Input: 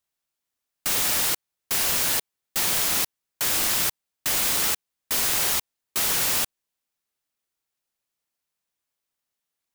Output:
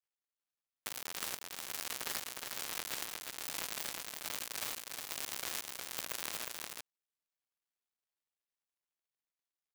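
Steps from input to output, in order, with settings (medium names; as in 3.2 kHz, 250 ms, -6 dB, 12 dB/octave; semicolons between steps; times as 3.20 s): dead-time distortion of 0.13 ms; bass shelf 190 Hz -9 dB; delay 360 ms -3.5 dB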